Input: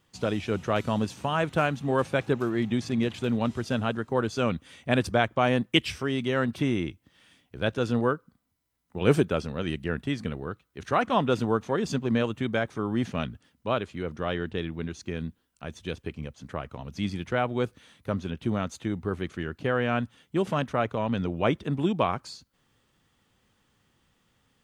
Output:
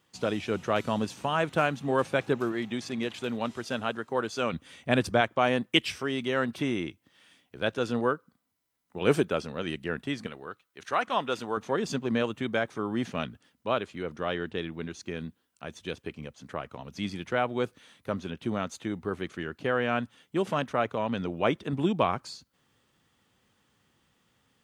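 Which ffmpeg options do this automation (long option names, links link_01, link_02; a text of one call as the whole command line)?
ffmpeg -i in.wav -af "asetnsamples=nb_out_samples=441:pad=0,asendcmd='2.52 highpass f 450;4.53 highpass f 110;5.21 highpass f 270;10.27 highpass f 830;11.57 highpass f 230;21.73 highpass f 98',highpass=frequency=190:poles=1" out.wav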